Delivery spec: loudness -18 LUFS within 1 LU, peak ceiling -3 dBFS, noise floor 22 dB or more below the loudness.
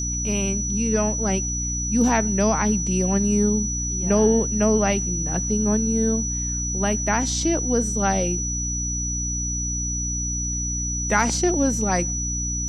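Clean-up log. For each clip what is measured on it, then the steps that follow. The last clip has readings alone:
hum 60 Hz; harmonics up to 300 Hz; hum level -26 dBFS; steady tone 5900 Hz; tone level -26 dBFS; loudness -22.0 LUFS; peak -5.0 dBFS; loudness target -18.0 LUFS
-> de-hum 60 Hz, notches 5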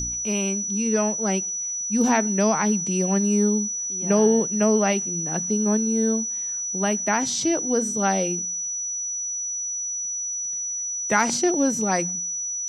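hum none; steady tone 5900 Hz; tone level -26 dBFS
-> notch 5900 Hz, Q 30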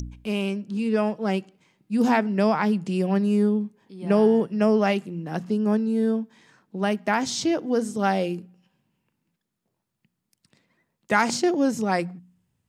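steady tone none; loudness -24.0 LUFS; peak -6.0 dBFS; loudness target -18.0 LUFS
-> gain +6 dB; limiter -3 dBFS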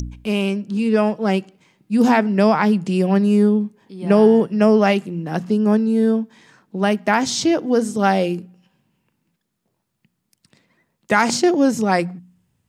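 loudness -18.0 LUFS; peak -3.0 dBFS; noise floor -75 dBFS

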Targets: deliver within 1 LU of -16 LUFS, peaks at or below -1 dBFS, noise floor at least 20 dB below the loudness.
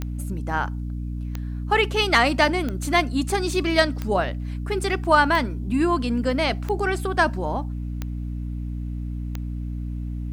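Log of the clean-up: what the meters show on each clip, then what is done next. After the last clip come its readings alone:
clicks 8; hum 60 Hz; harmonics up to 300 Hz; hum level -27 dBFS; loudness -24.0 LUFS; peak -5.0 dBFS; loudness target -16.0 LUFS
-> de-click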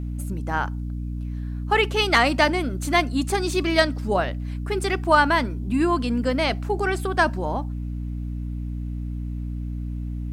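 clicks 0; hum 60 Hz; harmonics up to 300 Hz; hum level -27 dBFS
-> de-hum 60 Hz, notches 5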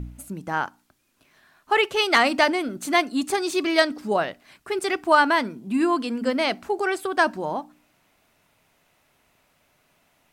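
hum none; loudness -23.0 LUFS; peak -5.5 dBFS; loudness target -16.0 LUFS
-> gain +7 dB; limiter -1 dBFS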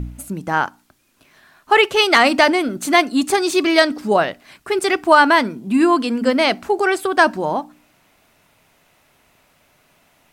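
loudness -16.5 LUFS; peak -1.0 dBFS; noise floor -59 dBFS

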